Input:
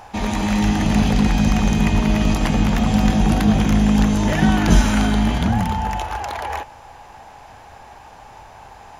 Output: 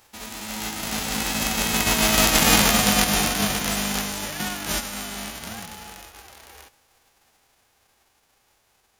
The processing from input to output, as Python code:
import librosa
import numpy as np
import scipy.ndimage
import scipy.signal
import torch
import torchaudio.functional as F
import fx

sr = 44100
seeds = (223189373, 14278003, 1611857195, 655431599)

y = fx.envelope_flatten(x, sr, power=0.3)
y = fx.doppler_pass(y, sr, speed_mps=12, closest_m=4.7, pass_at_s=2.47)